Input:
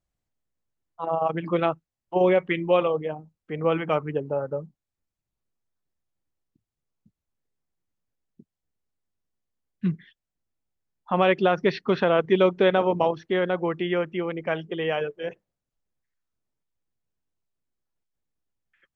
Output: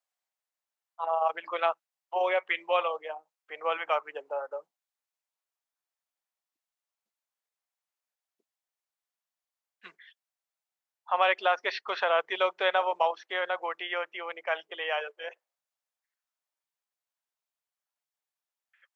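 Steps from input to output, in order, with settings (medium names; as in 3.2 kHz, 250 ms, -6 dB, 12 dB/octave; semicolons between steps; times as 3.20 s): high-pass 660 Hz 24 dB/octave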